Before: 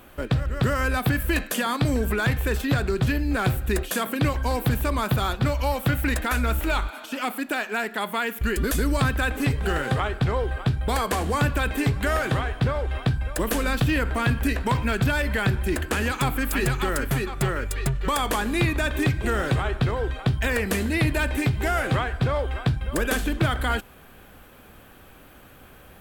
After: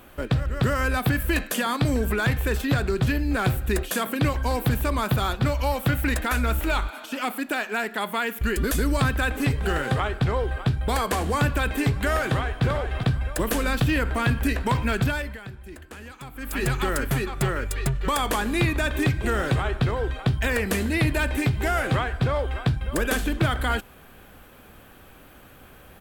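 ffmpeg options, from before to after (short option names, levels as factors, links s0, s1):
-filter_complex "[0:a]asplit=2[s0][s1];[s1]afade=t=in:st=12.24:d=0.01,afade=t=out:st=12.64:d=0.01,aecho=0:1:390|780|1170:0.473151|0.118288|0.029572[s2];[s0][s2]amix=inputs=2:normalize=0,asplit=3[s3][s4][s5];[s3]atrim=end=15.39,asetpts=PTS-STARTPTS,afade=t=out:st=15:d=0.39:silence=0.149624[s6];[s4]atrim=start=15.39:end=16.33,asetpts=PTS-STARTPTS,volume=0.15[s7];[s5]atrim=start=16.33,asetpts=PTS-STARTPTS,afade=t=in:d=0.39:silence=0.149624[s8];[s6][s7][s8]concat=n=3:v=0:a=1"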